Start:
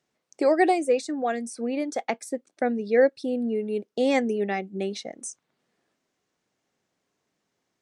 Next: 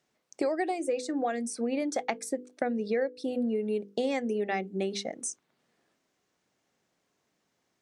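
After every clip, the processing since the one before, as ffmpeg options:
-af "bandreject=f=50:t=h:w=6,bandreject=f=100:t=h:w=6,bandreject=f=150:t=h:w=6,bandreject=f=200:t=h:w=6,bandreject=f=250:t=h:w=6,bandreject=f=300:t=h:w=6,bandreject=f=350:t=h:w=6,bandreject=f=400:t=h:w=6,bandreject=f=450:t=h:w=6,bandreject=f=500:t=h:w=6,acompressor=threshold=-27dB:ratio=12,volume=1.5dB"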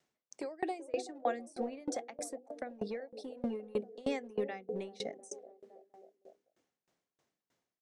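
-filter_complex "[0:a]acrossover=split=380|830[a][b][c];[a]asoftclip=type=hard:threshold=-32dB[d];[b]aecho=1:1:380|703|977.6|1211|1409:0.631|0.398|0.251|0.158|0.1[e];[d][e][c]amix=inputs=3:normalize=0,aeval=exprs='val(0)*pow(10,-26*if(lt(mod(3.2*n/s,1),2*abs(3.2)/1000),1-mod(3.2*n/s,1)/(2*abs(3.2)/1000),(mod(3.2*n/s,1)-2*abs(3.2)/1000)/(1-2*abs(3.2)/1000))/20)':c=same"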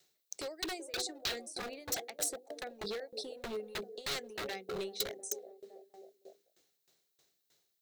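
-af "aeval=exprs='0.0158*(abs(mod(val(0)/0.0158+3,4)-2)-1)':c=same,equalizer=f=250:t=o:w=0.33:g=-8,equalizer=f=400:t=o:w=0.33:g=6,equalizer=f=1k:t=o:w=0.33:g=-5,equalizer=f=4k:t=o:w=0.33:g=9,equalizer=f=10k:t=o:w=0.33:g=-4,crystalizer=i=3.5:c=0"

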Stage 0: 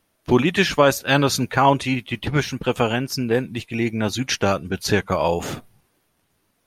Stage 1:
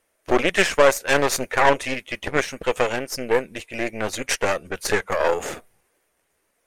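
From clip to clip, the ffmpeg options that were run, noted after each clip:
-af "aeval=exprs='0.75*(cos(1*acos(clip(val(0)/0.75,-1,1)))-cos(1*PI/2))+0.15*(cos(4*acos(clip(val(0)/0.75,-1,1)))-cos(4*PI/2))+0.0531*(cos(8*acos(clip(val(0)/0.75,-1,1)))-cos(8*PI/2))':c=same,equalizer=f=125:t=o:w=1:g=-10,equalizer=f=250:t=o:w=1:g=-4,equalizer=f=500:t=o:w=1:g=8,equalizer=f=2k:t=o:w=1:g=7,equalizer=f=4k:t=o:w=1:g=-4,equalizer=f=8k:t=o:w=1:g=8,volume=-5dB"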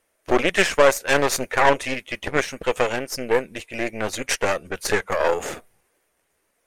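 -af anull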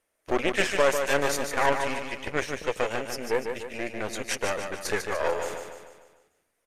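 -af "aresample=32000,aresample=44100,aecho=1:1:148|296|444|592|740|888:0.473|0.237|0.118|0.0591|0.0296|0.0148,volume=-7dB"

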